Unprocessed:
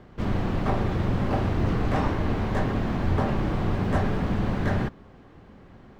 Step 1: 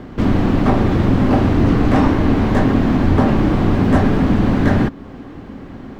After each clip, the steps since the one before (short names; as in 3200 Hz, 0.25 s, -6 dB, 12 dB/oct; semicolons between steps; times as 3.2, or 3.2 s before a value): bell 270 Hz +9 dB 0.53 oct; in parallel at +1 dB: compressor, threshold -32 dBFS, peak gain reduction 14.5 dB; on the sum: gain +6.5 dB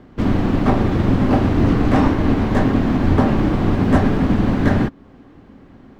upward expander 1.5:1, over -31 dBFS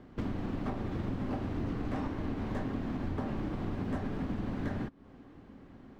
compressor 4:1, threshold -25 dBFS, peak gain reduction 14 dB; gain -8.5 dB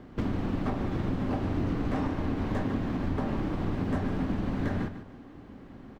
feedback echo 0.148 s, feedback 31%, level -11 dB; gain +5 dB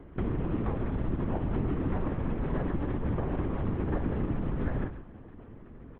air absorption 370 m; LPC vocoder at 8 kHz whisper